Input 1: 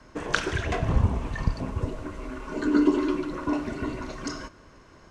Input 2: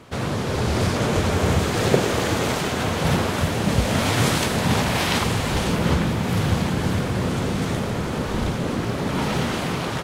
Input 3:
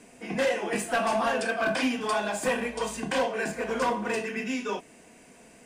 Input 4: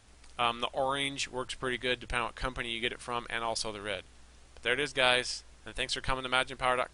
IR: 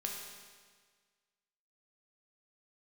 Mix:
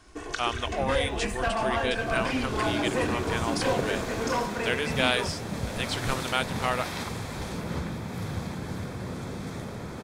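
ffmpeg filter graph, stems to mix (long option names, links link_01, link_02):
-filter_complex "[0:a]highshelf=frequency=3900:gain=8,aecho=1:1:2.7:0.65,acompressor=threshold=-22dB:ratio=6,volume=-7dB[link_01];[1:a]bandreject=frequency=2900:width=6,adelay=1850,volume=-12dB[link_02];[2:a]highshelf=frequency=7000:gain=-9.5,acrusher=bits=10:mix=0:aa=0.000001,adelay=500,volume=-2dB[link_03];[3:a]volume=0.5dB[link_04];[link_01][link_02][link_03][link_04]amix=inputs=4:normalize=0"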